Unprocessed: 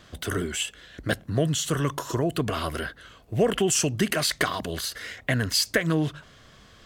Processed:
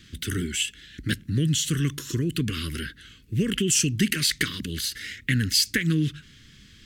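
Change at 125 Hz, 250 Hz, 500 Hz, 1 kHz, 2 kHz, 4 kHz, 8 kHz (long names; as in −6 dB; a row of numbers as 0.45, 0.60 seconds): +2.5, +1.5, −8.5, −14.0, 0.0, +2.5, +2.0 decibels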